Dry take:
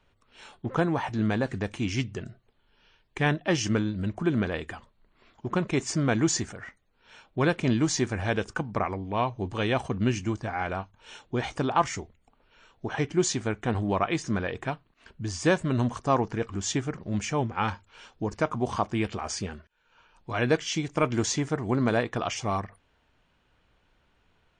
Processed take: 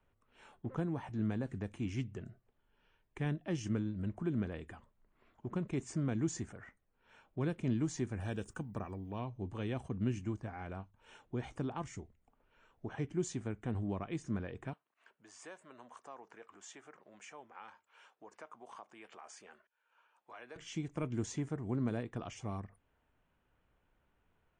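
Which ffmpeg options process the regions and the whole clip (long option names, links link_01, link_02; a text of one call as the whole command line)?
ffmpeg -i in.wav -filter_complex "[0:a]asettb=1/sr,asplit=3[link_01][link_02][link_03];[link_01]atrim=end=8.204[link_04];[link_02]atrim=start=8.2:end=9.19,asetpts=PTS-STARTPTS,afade=type=in:duration=0.004:curve=qsin,afade=type=out:start_time=0.986:duration=0.004:curve=qsin,aemphasis=mode=production:type=50fm,aeval=exprs='val(0)+0.00447*sin(2*PI*2000*n/s)':channel_layout=same,asuperstop=centerf=2100:order=20:qfactor=7.2[link_05];[link_03]atrim=start=9.186[link_06];[link_04][link_05]acrossfade=duration=0.004:curve1=hsin:curve2=qsin[link_07];[link_07][link_06]acrossfade=duration=0.004:curve1=qsin:curve2=hsin,asettb=1/sr,asplit=3[link_08][link_09][link_10];[link_08]atrim=end=14.734[link_11];[link_09]atrim=start=14.73:end=20.56,asetpts=PTS-STARTPTS,afade=type=in:duration=0.004:curve=qsin,afade=type=out:start_time=5.826:duration=0.004:curve=qsin,acompressor=threshold=-36dB:ratio=2:attack=3.2:release=140:knee=1:detection=peak,highpass=640[link_12];[link_10]atrim=start=20.556[link_13];[link_11][link_12]acrossfade=duration=0.004:curve1=hsin:curve2=qsin[link_14];[link_14][link_13]acrossfade=duration=0.004:curve1=qsin:curve2=hsin,acrossover=split=360|3000[link_15][link_16][link_17];[link_16]acompressor=threshold=-43dB:ratio=2[link_18];[link_15][link_18][link_17]amix=inputs=3:normalize=0,equalizer=frequency=4700:width=0.93:gain=-12.5,volume=-8dB" out.wav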